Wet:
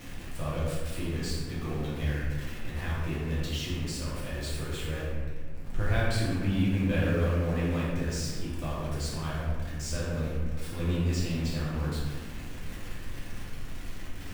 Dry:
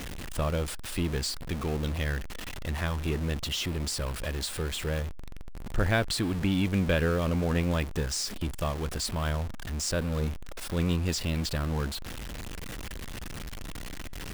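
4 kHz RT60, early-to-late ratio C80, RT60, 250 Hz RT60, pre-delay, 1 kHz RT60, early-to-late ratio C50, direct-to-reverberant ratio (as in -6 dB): 1.1 s, 0.5 dB, 1.6 s, 2.6 s, 3 ms, 1.4 s, -1.5 dB, -8.5 dB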